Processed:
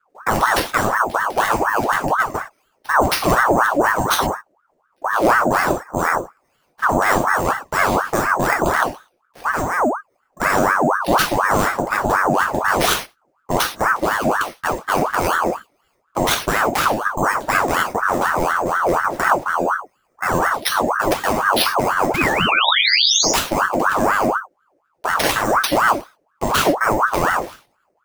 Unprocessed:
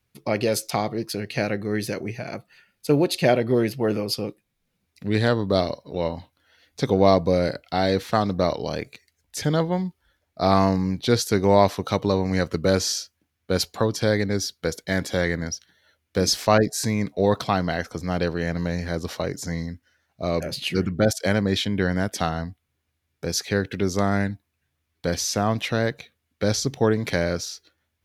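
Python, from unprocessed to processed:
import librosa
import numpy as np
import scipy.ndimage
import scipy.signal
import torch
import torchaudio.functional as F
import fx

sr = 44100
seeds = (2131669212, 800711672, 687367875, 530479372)

p1 = fx.wiener(x, sr, points=15)
p2 = fx.low_shelf(p1, sr, hz=97.0, db=-5.5)
p3 = np.repeat(p2[::6], 6)[:len(p2)]
p4 = (np.mod(10.0 ** (5.5 / 20.0) * p3 + 1.0, 2.0) - 1.0) / 10.0 ** (5.5 / 20.0)
p5 = p3 + F.gain(torch.from_numpy(p4), -10.0).numpy()
p6 = fx.bass_treble(p5, sr, bass_db=14, treble_db=4)
p7 = fx.spec_paint(p6, sr, seeds[0], shape='rise', start_s=22.14, length_s=1.18, low_hz=1000.0, high_hz=6500.0, level_db=-18.0)
p8 = fx.level_steps(p7, sr, step_db=24)
p9 = fx.rev_gated(p8, sr, seeds[1], gate_ms=140, shape='falling', drr_db=-0.5)
p10 = fx.ring_lfo(p9, sr, carrier_hz=930.0, swing_pct=55, hz=4.1)
y = F.gain(torch.from_numpy(p10), 8.0).numpy()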